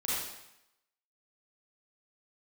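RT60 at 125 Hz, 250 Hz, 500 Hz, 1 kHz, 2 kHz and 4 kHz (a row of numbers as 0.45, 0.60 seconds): 0.80, 0.80, 0.80, 0.85, 0.85, 0.80 seconds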